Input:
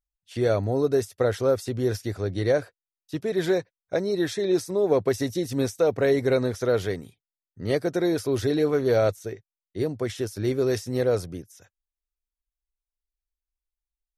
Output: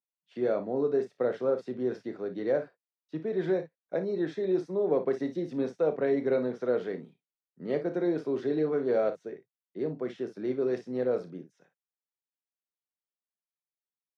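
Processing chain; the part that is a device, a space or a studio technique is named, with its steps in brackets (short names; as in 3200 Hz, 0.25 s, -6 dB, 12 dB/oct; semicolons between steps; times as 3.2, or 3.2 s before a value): steep high-pass 150 Hz 48 dB/oct; phone in a pocket (LPF 3900 Hz 12 dB/oct; high shelf 2300 Hz -12 dB); early reflections 32 ms -10.5 dB, 57 ms -12.5 dB; gain -5 dB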